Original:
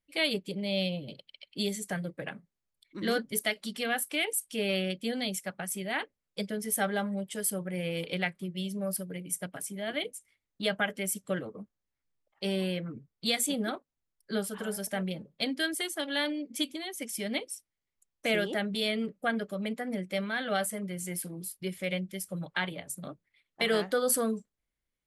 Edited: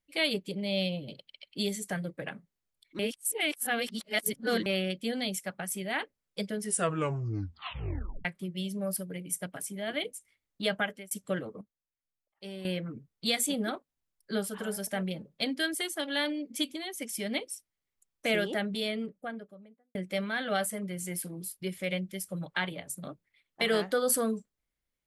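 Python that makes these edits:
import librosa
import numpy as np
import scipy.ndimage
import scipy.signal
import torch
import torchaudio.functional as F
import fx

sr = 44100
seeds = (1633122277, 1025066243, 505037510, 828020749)

y = fx.studio_fade_out(x, sr, start_s=18.5, length_s=1.45)
y = fx.edit(y, sr, fx.reverse_span(start_s=2.99, length_s=1.67),
    fx.tape_stop(start_s=6.6, length_s=1.65),
    fx.fade_out_span(start_s=10.79, length_s=0.32),
    fx.clip_gain(start_s=11.61, length_s=1.04, db=-11.0), tone=tone)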